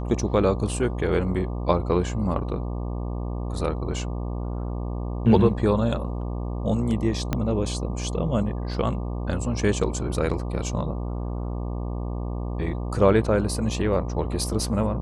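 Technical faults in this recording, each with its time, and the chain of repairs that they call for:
buzz 60 Hz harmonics 20 -29 dBFS
7.33 s: pop -10 dBFS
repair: de-click; de-hum 60 Hz, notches 20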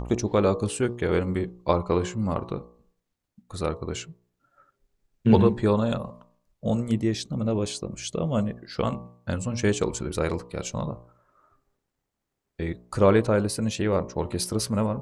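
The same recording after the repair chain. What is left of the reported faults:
7.33 s: pop

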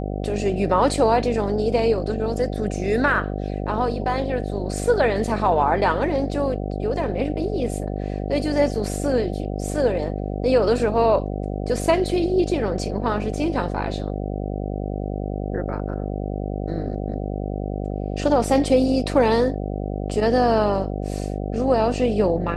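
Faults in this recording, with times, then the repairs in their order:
buzz 50 Hz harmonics 15 -27 dBFS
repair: de-hum 50 Hz, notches 15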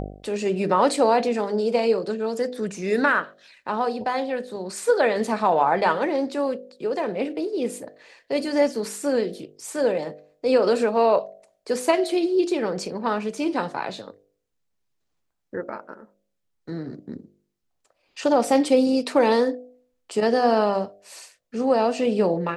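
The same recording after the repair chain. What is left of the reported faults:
nothing left

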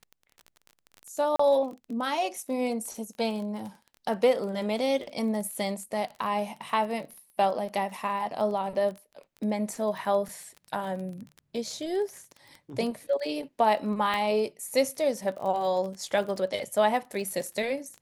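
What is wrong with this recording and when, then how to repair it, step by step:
crackle 26 per s -35 dBFS
1.36–1.39 s: dropout 34 ms
14.14 s: pop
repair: de-click; interpolate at 1.36 s, 34 ms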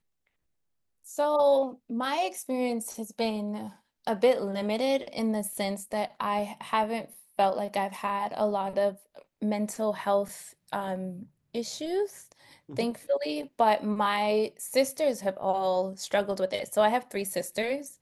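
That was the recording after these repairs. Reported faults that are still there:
14.14 s: pop

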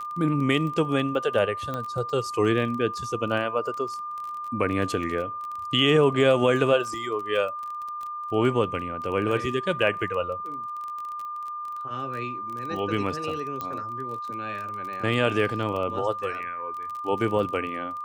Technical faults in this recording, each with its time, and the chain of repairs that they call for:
crackle 22 per s -32 dBFS
whine 1.2 kHz -31 dBFS
1.74 s: pop -18 dBFS
13.61 s: pop -17 dBFS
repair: de-click; band-stop 1.2 kHz, Q 30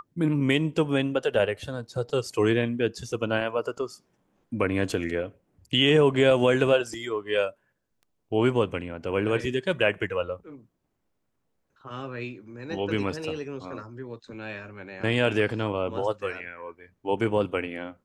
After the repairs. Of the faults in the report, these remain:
nothing left

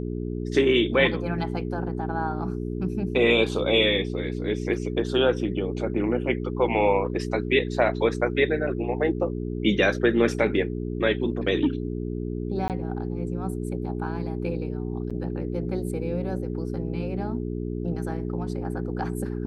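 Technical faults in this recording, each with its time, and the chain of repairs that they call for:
hum 60 Hz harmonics 7 -30 dBFS
12.68–12.70 s: dropout 18 ms
15.10–15.11 s: dropout 5.7 ms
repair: de-hum 60 Hz, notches 7; interpolate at 12.68 s, 18 ms; interpolate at 15.10 s, 5.7 ms

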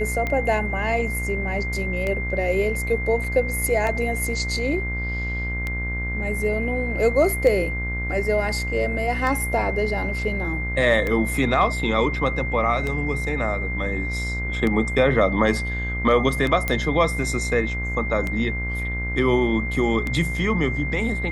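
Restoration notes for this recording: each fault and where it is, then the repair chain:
buzz 60 Hz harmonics 35 -28 dBFS
tick 33 1/3 rpm -13 dBFS
whine 2.1 kHz -28 dBFS
3.24 s: dropout 3 ms
16.68 s: pop -9 dBFS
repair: de-click; band-stop 2.1 kHz, Q 30; de-hum 60 Hz, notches 35; interpolate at 3.24 s, 3 ms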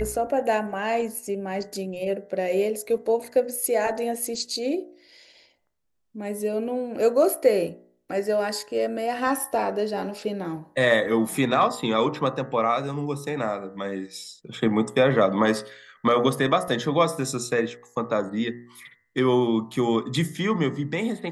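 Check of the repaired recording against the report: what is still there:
nothing left

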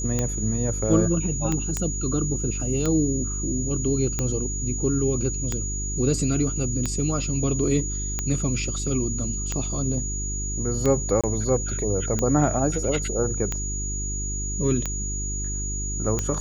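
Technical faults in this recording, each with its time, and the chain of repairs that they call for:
hum 50 Hz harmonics 8 -30 dBFS
tick 45 rpm -11 dBFS
whine 6.8 kHz -30 dBFS
1.77 s: pop -11 dBFS
11.21–11.24 s: dropout 26 ms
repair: de-click; band-stop 6.8 kHz, Q 30; de-hum 50 Hz, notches 8; interpolate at 11.21 s, 26 ms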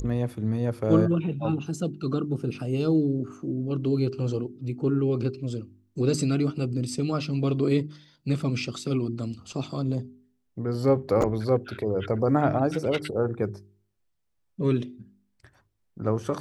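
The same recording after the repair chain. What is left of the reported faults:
nothing left

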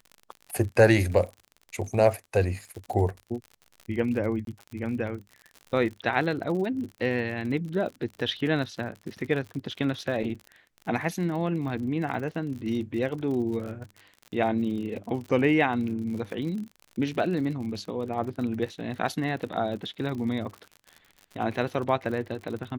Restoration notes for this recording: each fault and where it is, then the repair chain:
crackle 55 per s -35 dBFS
4.45–4.47 s: dropout 22 ms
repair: de-click; interpolate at 4.45 s, 22 ms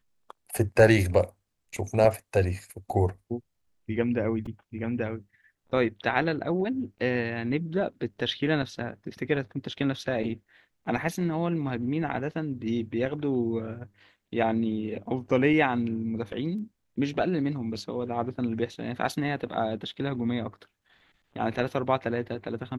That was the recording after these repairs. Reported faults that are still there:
nothing left

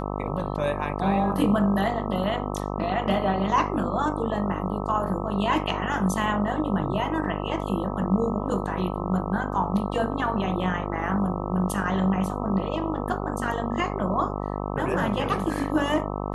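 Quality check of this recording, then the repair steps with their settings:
buzz 50 Hz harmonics 26 -30 dBFS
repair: de-hum 50 Hz, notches 26

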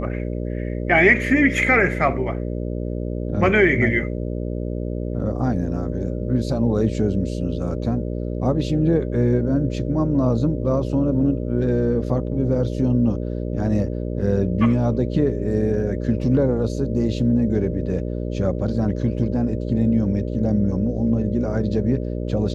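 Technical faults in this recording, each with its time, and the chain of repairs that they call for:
buzz 60 Hz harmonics 10 -26 dBFS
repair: de-hum 60 Hz, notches 10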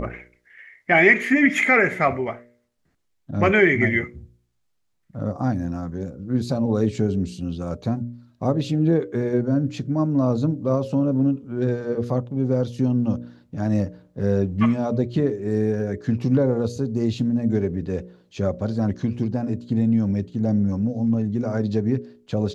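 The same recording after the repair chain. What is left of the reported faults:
nothing left

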